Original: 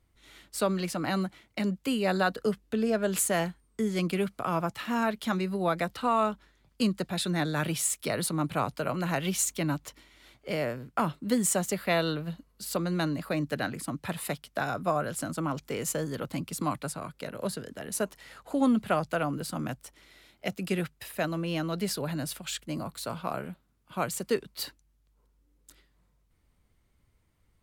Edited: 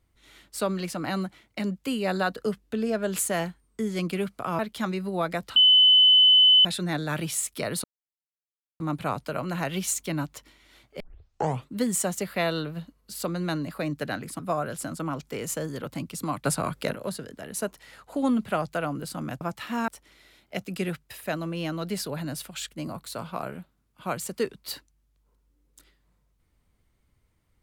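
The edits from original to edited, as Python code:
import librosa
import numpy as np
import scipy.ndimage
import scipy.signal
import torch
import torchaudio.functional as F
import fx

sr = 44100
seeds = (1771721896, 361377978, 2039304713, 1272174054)

y = fx.edit(x, sr, fx.move(start_s=4.59, length_s=0.47, to_s=19.79),
    fx.bleep(start_s=6.03, length_s=1.09, hz=3020.0, db=-13.0),
    fx.insert_silence(at_s=8.31, length_s=0.96),
    fx.tape_start(start_s=10.51, length_s=0.69),
    fx.cut(start_s=13.9, length_s=0.87),
    fx.clip_gain(start_s=16.83, length_s=0.5, db=9.5), tone=tone)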